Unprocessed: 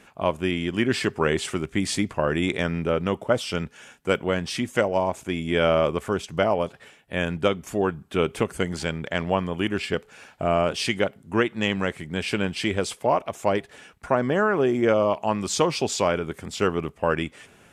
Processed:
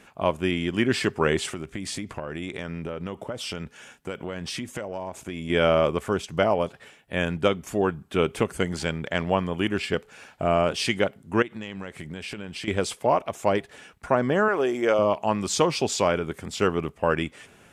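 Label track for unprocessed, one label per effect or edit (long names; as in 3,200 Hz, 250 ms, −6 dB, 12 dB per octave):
1.520000	5.500000	downward compressor 10 to 1, threshold −28 dBFS
11.420000	12.680000	downward compressor 12 to 1, threshold −31 dBFS
14.480000	14.990000	bass and treble bass −14 dB, treble +4 dB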